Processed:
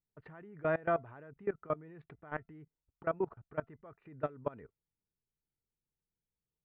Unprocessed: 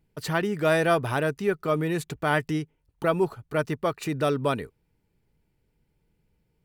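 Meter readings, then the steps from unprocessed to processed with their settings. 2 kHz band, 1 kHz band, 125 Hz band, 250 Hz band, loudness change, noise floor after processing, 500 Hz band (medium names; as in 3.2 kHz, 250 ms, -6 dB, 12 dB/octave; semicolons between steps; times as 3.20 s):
-15.0 dB, -12.0 dB, -17.0 dB, -16.0 dB, -12.0 dB, under -85 dBFS, -11.5 dB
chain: inverse Chebyshev low-pass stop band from 9.9 kHz, stop band 80 dB; level held to a coarse grid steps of 22 dB; feedback comb 680 Hz, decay 0.16 s, harmonics all, mix 30%; trim -4.5 dB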